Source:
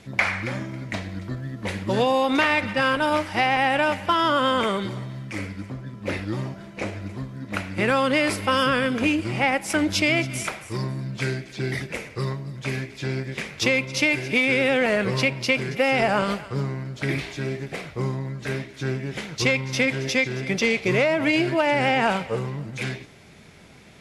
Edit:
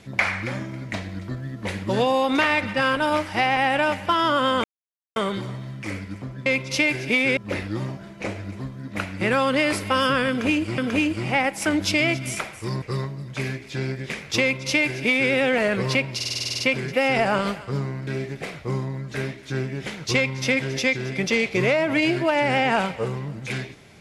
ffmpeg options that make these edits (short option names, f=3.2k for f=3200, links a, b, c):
-filter_complex "[0:a]asplit=16[a][b][c][d][e][f][g][h][i][j][k][l][m][n][o][p];[a]atrim=end=4.64,asetpts=PTS-STARTPTS,afade=t=out:st=4.636:d=0.004:c=hsin,apad=pad_dur=0.52[q];[b]atrim=start=4.64:end=5.942,asetpts=PTS-STARTPTS,afade=t=in:d=0.004:c=hsin[r];[c]atrim=start=13.688:end=14.602[s];[d]atrim=start=5.938:end=9.352[t];[e]atrim=start=8.858:end=10.902[u];[f]atrim=start=12.098:end=15.482[v];[g]atrim=start=15.428:end=15.482[w];[h]atrim=start=15.428:end=15.482[x];[i]atrim=start=15.428:end=15.482[y];[j]atrim=start=15.428:end=15.482[z];[k]atrim=start=15.428:end=15.482[aa];[l]atrim=start=15.428:end=15.482[ab];[m]atrim=start=15.428:end=15.482[ac];[n]atrim=start=15.428:end=15.482[ad];[o]atrim=start=15.428:end=16.902[ae];[p]atrim=start=17.378[af];[q][r]concat=n=2:v=0:a=1[ag];[ag][s]acrossfade=d=0.004:c1=hsin:c2=hsin[ah];[ah][t]acrossfade=d=0.004:c1=hsin:c2=hsin[ai];[ai][u]acrossfade=d=0.004:c1=hsin:c2=hsin[aj];[aj][v]acrossfade=d=0.004:c1=hsin:c2=hsin[ak];[ak][w]acrossfade=d=0.004:c1=hsin:c2=hsin[al];[al][x]acrossfade=d=0.004:c1=hsin:c2=hsin[am];[am][y]acrossfade=d=0.004:c1=hsin:c2=hsin[an];[an][z]acrossfade=d=0.004:c1=hsin:c2=hsin[ao];[ao][aa]acrossfade=d=0.004:c1=hsin:c2=hsin[ap];[ap][ab]acrossfade=d=0.004:c1=hsin:c2=hsin[aq];[aq][ac]acrossfade=d=0.004:c1=hsin:c2=hsin[ar];[ar][ad]acrossfade=d=0.004:c1=hsin:c2=hsin[as];[as][ae]acrossfade=d=0.004:c1=hsin:c2=hsin[at];[at][af]acrossfade=d=0.004:c1=hsin:c2=hsin"